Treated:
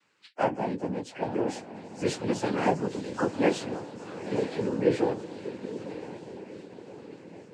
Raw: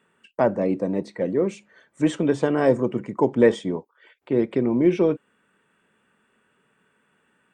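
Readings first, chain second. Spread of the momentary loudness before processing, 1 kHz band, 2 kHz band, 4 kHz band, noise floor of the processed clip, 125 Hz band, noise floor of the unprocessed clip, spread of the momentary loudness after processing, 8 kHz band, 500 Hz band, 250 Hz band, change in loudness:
9 LU, -0.5 dB, -3.0 dB, +0.5 dB, -52 dBFS, -6.0 dB, -67 dBFS, 18 LU, no reading, -7.0 dB, -7.5 dB, -7.5 dB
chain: partials quantised in pitch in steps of 2 st; echo that smears into a reverb 950 ms, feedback 53%, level -10.5 dB; noise-vocoded speech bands 8; trim -6 dB

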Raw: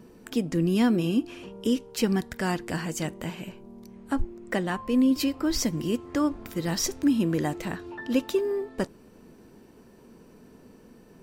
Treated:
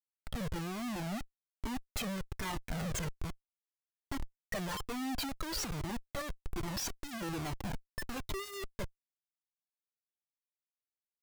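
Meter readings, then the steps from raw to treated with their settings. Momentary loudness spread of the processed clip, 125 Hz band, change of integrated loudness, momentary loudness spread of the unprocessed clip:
7 LU, -9.0 dB, -12.5 dB, 12 LU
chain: expander on every frequency bin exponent 2; Schmitt trigger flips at -42.5 dBFS; Shepard-style flanger falling 1.2 Hz

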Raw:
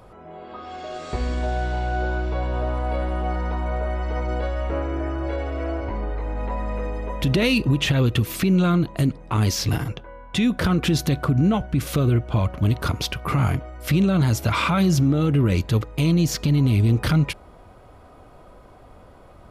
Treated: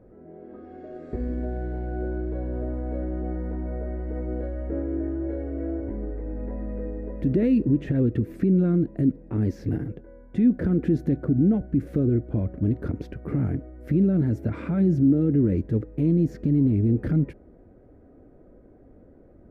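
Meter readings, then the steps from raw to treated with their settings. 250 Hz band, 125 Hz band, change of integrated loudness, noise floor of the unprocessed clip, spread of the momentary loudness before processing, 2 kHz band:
0.0 dB, -4.5 dB, -2.5 dB, -47 dBFS, 10 LU, -17.0 dB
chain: FFT filter 140 Hz 0 dB, 280 Hz +9 dB, 500 Hz +2 dB, 1.1 kHz -19 dB, 1.7 kHz -6 dB, 3.1 kHz -25 dB; trim -5.5 dB

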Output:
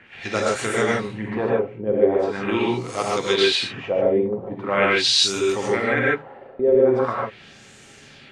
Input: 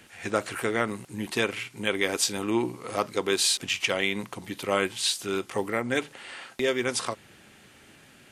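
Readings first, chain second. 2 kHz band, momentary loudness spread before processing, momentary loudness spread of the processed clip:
+5.0 dB, 11 LU, 9 LU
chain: LFO low-pass sine 0.42 Hz 480–7400 Hz; gated-style reverb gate 170 ms rising, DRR -4 dB

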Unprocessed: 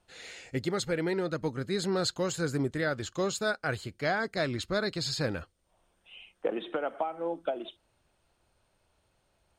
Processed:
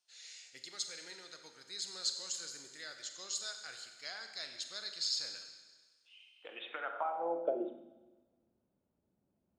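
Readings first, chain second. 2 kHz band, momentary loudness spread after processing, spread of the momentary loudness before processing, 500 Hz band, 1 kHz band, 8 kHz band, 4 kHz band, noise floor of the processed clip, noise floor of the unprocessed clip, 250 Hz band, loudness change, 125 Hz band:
-12.5 dB, 15 LU, 8 LU, -11.5 dB, -6.5 dB, -0.5 dB, -1.5 dB, -82 dBFS, -73 dBFS, -17.0 dB, -8.0 dB, under -30 dB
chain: Schroeder reverb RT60 1.4 s, combs from 32 ms, DRR 5.5 dB; band-pass sweep 5.6 kHz -> 230 Hz, 6.26–7.85 s; trim +2 dB

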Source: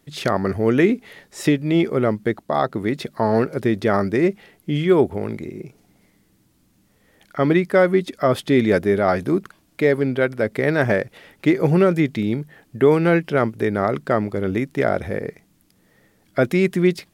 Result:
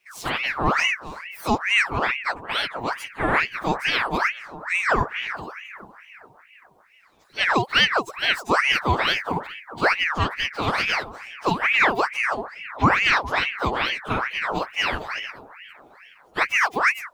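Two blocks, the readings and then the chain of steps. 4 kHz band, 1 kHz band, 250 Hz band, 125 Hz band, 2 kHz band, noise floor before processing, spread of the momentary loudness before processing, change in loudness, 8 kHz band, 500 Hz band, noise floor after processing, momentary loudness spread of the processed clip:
+11.0 dB, +3.5 dB, -12.5 dB, -9.0 dB, +6.5 dB, -61 dBFS, 11 LU, -2.0 dB, no reading, -11.5 dB, -55 dBFS, 13 LU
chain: frequency axis rescaled in octaves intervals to 124%; feedback echo behind a low-pass 410 ms, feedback 53%, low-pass 800 Hz, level -15.5 dB; ring modulator with a swept carrier 1.5 kHz, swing 65%, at 2.3 Hz; trim +1 dB

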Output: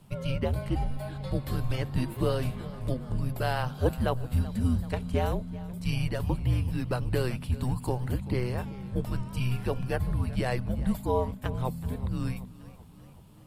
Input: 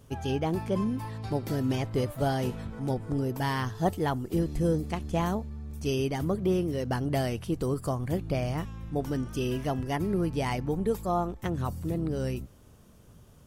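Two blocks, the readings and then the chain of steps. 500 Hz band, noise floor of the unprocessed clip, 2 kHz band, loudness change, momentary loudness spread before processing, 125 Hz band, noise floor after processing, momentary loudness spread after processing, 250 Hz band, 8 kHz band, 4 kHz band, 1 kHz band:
-2.5 dB, -55 dBFS, 0.0 dB, -0.5 dB, 5 LU, +2.0 dB, -50 dBFS, 6 LU, -3.0 dB, -3.0 dB, -1.0 dB, -3.0 dB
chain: graphic EQ with 31 bands 800 Hz +3 dB, 1.25 kHz +4 dB, 4 kHz +4 dB, 6.3 kHz -10 dB; frequency shift -250 Hz; modulated delay 382 ms, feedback 57%, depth 94 cents, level -18 dB

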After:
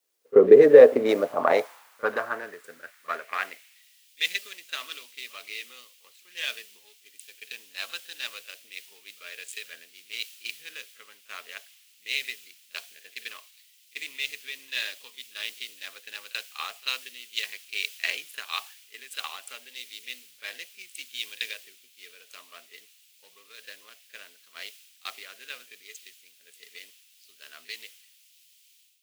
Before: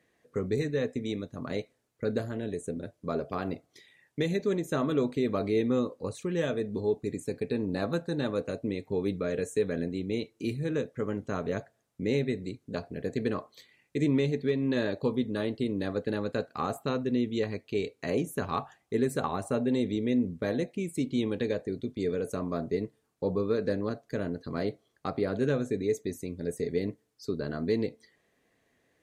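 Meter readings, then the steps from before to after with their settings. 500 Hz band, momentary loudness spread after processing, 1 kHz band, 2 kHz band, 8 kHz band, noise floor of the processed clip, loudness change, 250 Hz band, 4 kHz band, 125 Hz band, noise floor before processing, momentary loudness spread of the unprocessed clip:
+5.5 dB, 18 LU, +2.5 dB, +7.5 dB, +5.0 dB, -60 dBFS, +6.5 dB, -8.0 dB, +10.5 dB, under -15 dB, -74 dBFS, 8 LU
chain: local Wiener filter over 15 samples; compression 5:1, threshold -28 dBFS, peak gain reduction 6.5 dB; word length cut 10-bit, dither triangular; level rider gain up to 7.5 dB; high-pass sweep 430 Hz -> 2.7 kHz, 0.37–3.89 s; reverse echo 37 ms -15 dB; three bands expanded up and down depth 100%; trim +2 dB

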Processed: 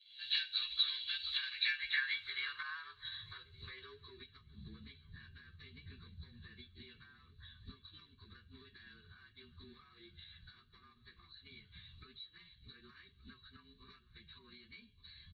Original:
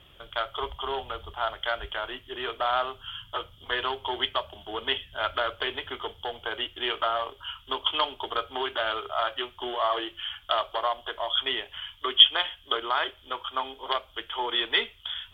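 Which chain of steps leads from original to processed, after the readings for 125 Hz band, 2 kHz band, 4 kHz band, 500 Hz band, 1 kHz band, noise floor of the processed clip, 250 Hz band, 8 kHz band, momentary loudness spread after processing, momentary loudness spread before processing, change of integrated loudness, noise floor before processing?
-5.5 dB, -10.0 dB, -15.0 dB, -34.0 dB, -30.5 dB, -67 dBFS, -18.0 dB, no reading, 23 LU, 9 LU, -9.5 dB, -55 dBFS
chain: frequency axis rescaled in octaves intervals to 108%; recorder AGC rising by 74 dB/s; feedback delay 1174 ms, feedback 49%, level -18.5 dB; dynamic bell 910 Hz, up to -7 dB, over -40 dBFS, Q 3.9; comb 1.8 ms, depth 69%; band-pass sweep 3.1 kHz -> 220 Hz, 1.34–4.64 s; Chebyshev band-stop 150–2400 Hz, order 2; trim -5 dB

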